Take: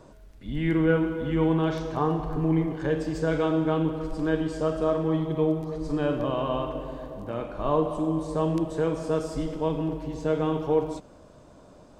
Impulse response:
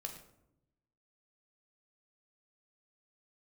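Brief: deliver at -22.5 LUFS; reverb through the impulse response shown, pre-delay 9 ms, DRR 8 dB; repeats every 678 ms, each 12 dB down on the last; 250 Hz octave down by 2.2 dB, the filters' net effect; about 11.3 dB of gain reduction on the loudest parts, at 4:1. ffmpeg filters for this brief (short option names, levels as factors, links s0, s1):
-filter_complex "[0:a]equalizer=f=250:t=o:g=-3.5,acompressor=threshold=0.0224:ratio=4,aecho=1:1:678|1356|2034:0.251|0.0628|0.0157,asplit=2[s0][s1];[1:a]atrim=start_sample=2205,adelay=9[s2];[s1][s2]afir=irnorm=-1:irlink=0,volume=0.531[s3];[s0][s3]amix=inputs=2:normalize=0,volume=4.47"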